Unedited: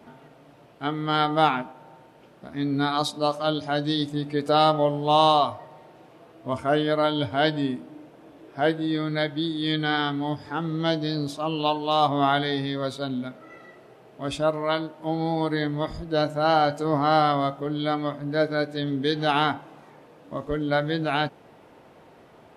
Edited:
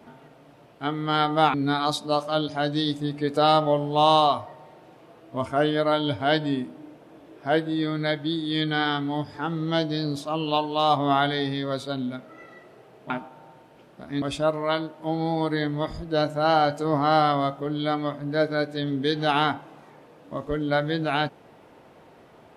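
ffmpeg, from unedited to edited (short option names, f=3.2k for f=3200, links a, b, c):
-filter_complex "[0:a]asplit=4[a][b][c][d];[a]atrim=end=1.542[e];[b]atrim=start=2.658:end=14.222[f];[c]atrim=start=1.538:end=2.662[g];[d]atrim=start=14.218[h];[e][f]acrossfade=d=0.004:c1=hsin:c2=hsin[i];[i][g]acrossfade=d=0.004:c1=hsin:c2=hsin[j];[j][h]acrossfade=d=0.004:c1=hsin:c2=hsin"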